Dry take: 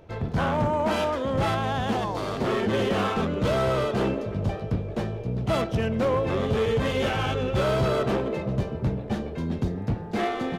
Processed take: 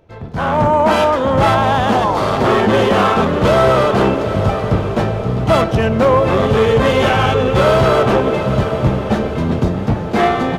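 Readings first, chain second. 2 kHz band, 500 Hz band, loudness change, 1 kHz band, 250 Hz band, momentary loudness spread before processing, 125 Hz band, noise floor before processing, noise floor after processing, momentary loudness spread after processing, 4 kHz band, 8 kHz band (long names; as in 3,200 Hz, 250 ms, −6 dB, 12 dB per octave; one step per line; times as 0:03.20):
+12.0 dB, +12.0 dB, +12.0 dB, +14.0 dB, +10.5 dB, 6 LU, +10.0 dB, −35 dBFS, −22 dBFS, 6 LU, +10.5 dB, +10.0 dB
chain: dynamic equaliser 1,000 Hz, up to +5 dB, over −39 dBFS, Q 0.82
automatic gain control gain up to 14 dB
on a send: feedback delay with all-pass diffusion 816 ms, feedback 48%, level −10 dB
on the sum: level −2 dB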